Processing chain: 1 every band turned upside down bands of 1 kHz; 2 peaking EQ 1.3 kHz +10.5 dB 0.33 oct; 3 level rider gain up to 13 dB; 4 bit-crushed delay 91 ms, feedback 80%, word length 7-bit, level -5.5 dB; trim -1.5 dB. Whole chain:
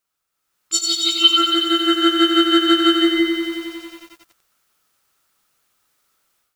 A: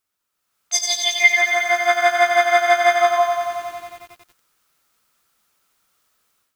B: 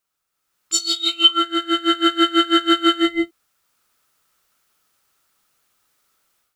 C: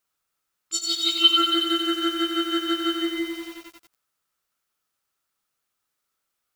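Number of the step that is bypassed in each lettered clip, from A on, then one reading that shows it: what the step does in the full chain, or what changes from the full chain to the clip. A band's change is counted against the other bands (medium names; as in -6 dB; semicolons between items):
1, 250 Hz band -30.0 dB; 4, 1 kHz band +3.5 dB; 3, loudness change -6.5 LU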